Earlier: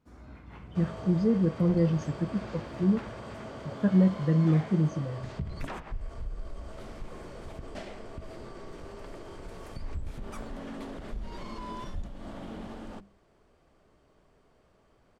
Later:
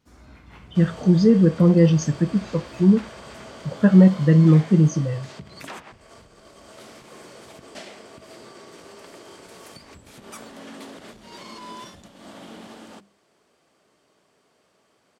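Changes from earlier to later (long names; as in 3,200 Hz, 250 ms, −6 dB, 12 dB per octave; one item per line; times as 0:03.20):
speech +9.5 dB
second sound: add high-pass filter 180 Hz 12 dB per octave
master: add high-shelf EQ 2,500 Hz +12 dB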